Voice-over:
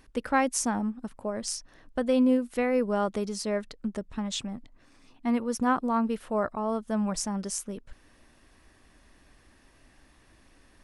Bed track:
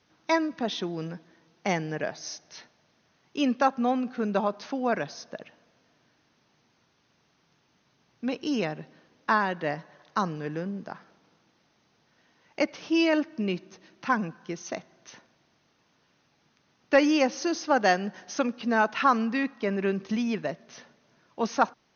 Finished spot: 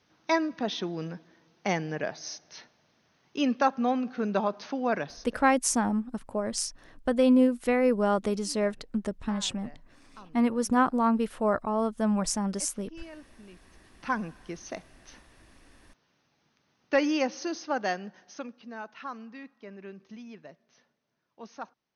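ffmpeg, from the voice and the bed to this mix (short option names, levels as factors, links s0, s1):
-filter_complex "[0:a]adelay=5100,volume=1.26[s0];[1:a]volume=7.5,afade=t=out:st=4.97:d=0.55:silence=0.0841395,afade=t=in:st=13.66:d=0.42:silence=0.11885,afade=t=out:st=17.26:d=1.46:silence=0.223872[s1];[s0][s1]amix=inputs=2:normalize=0"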